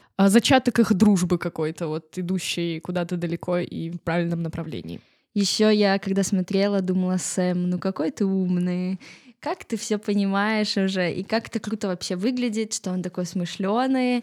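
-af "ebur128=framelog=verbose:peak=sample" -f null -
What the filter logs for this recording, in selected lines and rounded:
Integrated loudness:
  I:         -23.7 LUFS
  Threshold: -33.9 LUFS
Loudness range:
  LRA:         4.4 LU
  Threshold: -44.5 LUFS
  LRA low:   -27.0 LUFS
  LRA high:  -22.6 LUFS
Sample peak:
  Peak:       -5.2 dBFS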